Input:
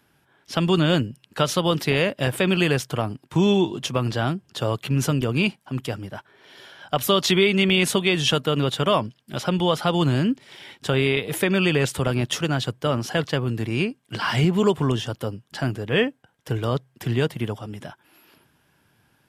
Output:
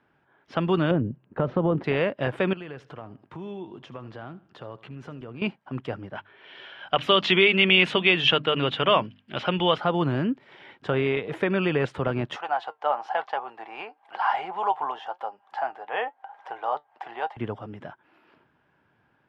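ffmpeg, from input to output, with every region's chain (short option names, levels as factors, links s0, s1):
-filter_complex "[0:a]asettb=1/sr,asplit=3[s0][s1][s2];[s0]atrim=end=0.914[s3];[s1]atrim=start=0.91:end=1.84,asetpts=PTS-STARTPTS,afade=t=in:d=0.004:c=qsin,afade=t=out:st=0.926:d=0.004:c=qsin,lowpass=2700,tiltshelf=f=930:g=9,acompressor=threshold=0.178:ratio=5:attack=3.2:release=140:knee=1:detection=peak[s4];[s2]atrim=start=1.836[s5];[s3][s4]acrossfade=d=0.004:c1=hsin:c2=qsin[s6];[s6][s5]acrossfade=d=0.004:c1=qsin:c2=hsin,asettb=1/sr,asplit=3[s7][s8][s9];[s7]atrim=end=2.534[s10];[s8]atrim=start=2.53:end=5.42,asetpts=PTS-STARTPTS,afade=t=in:d=0.004:c=qsin,afade=t=out:st=2.886:d=0.004:c=qsin,acompressor=threshold=0.0126:ratio=2.5:attack=3.2:release=140:knee=1:detection=peak,aecho=1:1:78|156|234:0.119|0.044|0.0163,atrim=end_sample=127449[s11];[s9]atrim=start=5.416[s12];[s10][s11]acrossfade=d=0.004:c1=hsin:c2=qsin[s13];[s13][s12]acrossfade=d=0.004:c1=qsin:c2=hsin,asettb=1/sr,asplit=3[s14][s15][s16];[s14]atrim=end=6.154[s17];[s15]atrim=start=6.15:end=9.78,asetpts=PTS-STARTPTS,afade=t=in:d=0.004:c=qsin,afade=t=out:st=3.626:d=0.004:c=qsin,equalizer=f=2900:w=1.2:g=13,bandreject=f=50:t=h:w=6,bandreject=f=100:t=h:w=6,bandreject=f=150:t=h:w=6,bandreject=f=200:t=h:w=6,bandreject=f=250:t=h:w=6,bandreject=f=300:t=h:w=6[s18];[s16]atrim=start=9.776[s19];[s17][s18]acrossfade=d=0.004:c1=hsin:c2=qsin[s20];[s20][s19]acrossfade=d=0.004:c1=qsin:c2=hsin,asettb=1/sr,asplit=3[s21][s22][s23];[s21]atrim=end=12.364[s24];[s22]atrim=start=12.36:end=17.37,asetpts=PTS-STARTPTS,afade=t=in:d=0.004:c=qsin,afade=t=out:st=5.006:d=0.004:c=qsin,acompressor=mode=upward:threshold=0.0316:ratio=2.5:attack=3.2:release=140:knee=2.83:detection=peak,flanger=delay=4.9:depth=1.9:regen=71:speed=1:shape=sinusoidal,highpass=f=800:t=q:w=9[s25];[s23]atrim=start=17.366[s26];[s24][s25]acrossfade=d=0.004:c1=hsin:c2=qsin[s27];[s27][s26]acrossfade=d=0.004:c1=qsin:c2=hsin,lowpass=1800,lowshelf=f=220:g=-8.5"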